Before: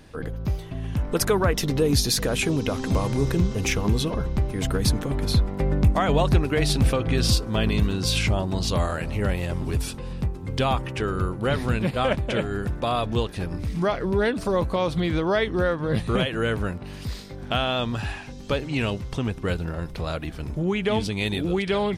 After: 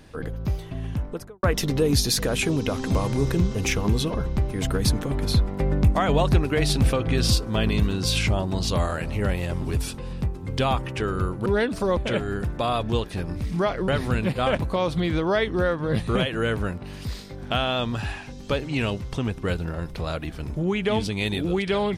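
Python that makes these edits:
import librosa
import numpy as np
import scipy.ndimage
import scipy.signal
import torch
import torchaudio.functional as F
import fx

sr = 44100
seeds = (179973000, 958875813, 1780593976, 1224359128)

y = fx.studio_fade_out(x, sr, start_s=0.79, length_s=0.64)
y = fx.edit(y, sr, fx.swap(start_s=11.46, length_s=0.74, other_s=14.11, other_length_s=0.51), tone=tone)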